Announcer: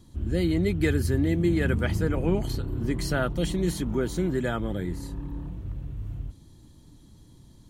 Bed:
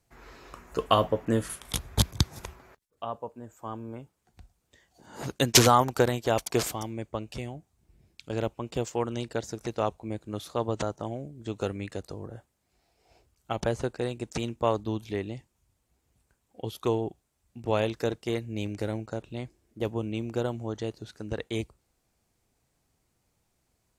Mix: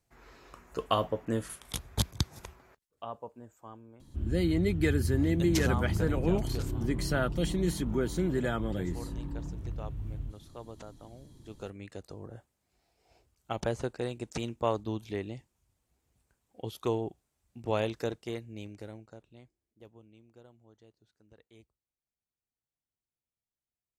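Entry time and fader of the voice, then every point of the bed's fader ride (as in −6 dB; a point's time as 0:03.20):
4.00 s, −3.0 dB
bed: 0:03.40 −5.5 dB
0:04.02 −16.5 dB
0:11.12 −16.5 dB
0:12.35 −3.5 dB
0:17.96 −3.5 dB
0:20.19 −26.5 dB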